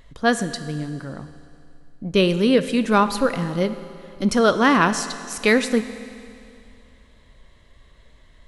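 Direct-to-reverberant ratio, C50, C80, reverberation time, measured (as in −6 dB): 10.5 dB, 11.5 dB, 12.5 dB, 2.5 s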